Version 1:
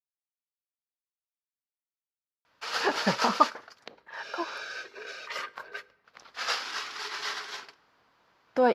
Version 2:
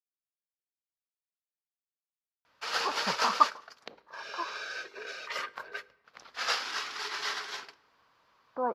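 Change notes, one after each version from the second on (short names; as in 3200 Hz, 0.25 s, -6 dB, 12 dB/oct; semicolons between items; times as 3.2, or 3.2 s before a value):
speech: add ladder low-pass 1200 Hz, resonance 75%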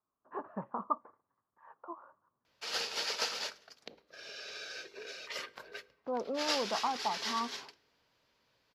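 speech: entry -2.50 s; master: add bell 1200 Hz -11 dB 1.5 oct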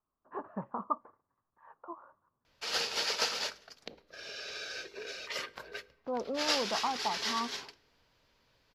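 background +3.0 dB; master: remove HPF 150 Hz 6 dB/oct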